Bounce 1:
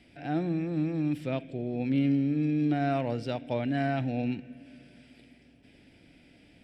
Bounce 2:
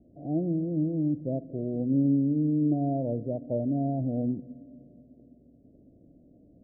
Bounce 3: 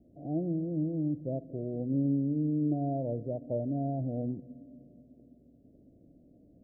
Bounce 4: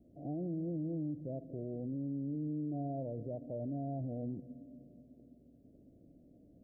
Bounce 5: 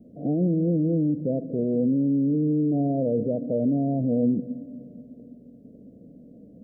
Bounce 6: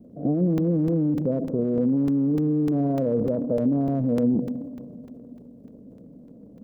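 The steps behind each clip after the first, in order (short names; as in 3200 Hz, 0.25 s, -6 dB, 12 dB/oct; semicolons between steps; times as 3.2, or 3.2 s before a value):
elliptic low-pass 630 Hz, stop band 50 dB; gain +2 dB
dynamic EQ 240 Hz, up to -4 dB, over -39 dBFS, Q 2.3; gain -2.5 dB
limiter -30 dBFS, peak gain reduction 9.5 dB; gain -2 dB
dynamic EQ 320 Hz, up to +5 dB, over -49 dBFS, Q 0.97; small resonant body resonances 210/460 Hz, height 15 dB, ringing for 30 ms; gain +3 dB
transient shaper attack +4 dB, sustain +8 dB; crackling interface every 0.30 s, samples 128, zero, from 0.58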